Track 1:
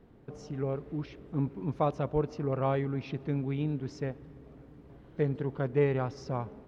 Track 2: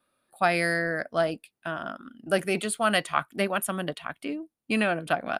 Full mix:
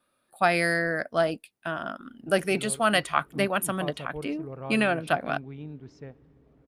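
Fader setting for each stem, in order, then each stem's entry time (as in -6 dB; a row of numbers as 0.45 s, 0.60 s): -8.5 dB, +1.0 dB; 2.00 s, 0.00 s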